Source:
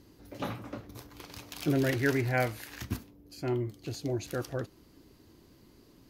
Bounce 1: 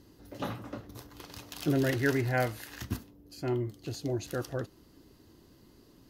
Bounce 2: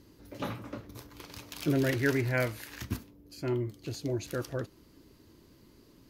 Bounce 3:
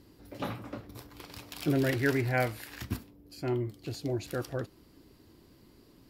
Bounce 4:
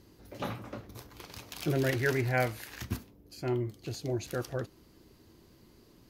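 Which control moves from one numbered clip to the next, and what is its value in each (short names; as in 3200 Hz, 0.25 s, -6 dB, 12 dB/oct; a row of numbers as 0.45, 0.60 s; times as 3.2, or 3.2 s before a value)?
notch, frequency: 2300, 750, 6300, 280 Hz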